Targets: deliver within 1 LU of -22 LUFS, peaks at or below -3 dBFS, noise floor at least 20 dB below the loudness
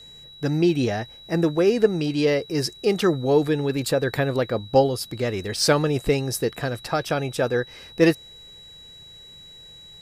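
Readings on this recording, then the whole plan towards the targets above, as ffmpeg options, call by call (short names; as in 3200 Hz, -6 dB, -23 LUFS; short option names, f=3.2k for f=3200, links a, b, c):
steady tone 3900 Hz; tone level -43 dBFS; loudness -23.0 LUFS; peak -4.5 dBFS; loudness target -22.0 LUFS
-> -af "bandreject=f=3.9k:w=30"
-af "volume=1dB"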